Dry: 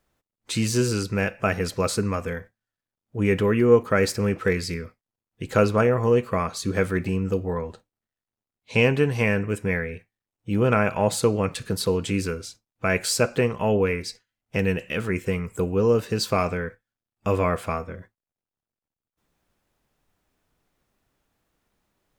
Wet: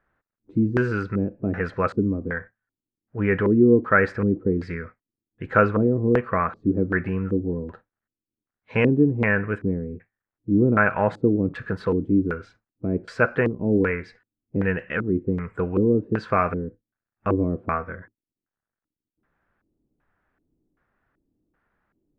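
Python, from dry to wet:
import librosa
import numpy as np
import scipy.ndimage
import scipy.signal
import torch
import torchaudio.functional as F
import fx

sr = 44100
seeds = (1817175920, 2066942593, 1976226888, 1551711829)

y = fx.filter_lfo_lowpass(x, sr, shape='square', hz=1.3, low_hz=310.0, high_hz=1600.0, q=3.3)
y = F.gain(torch.from_numpy(y), -1.0).numpy()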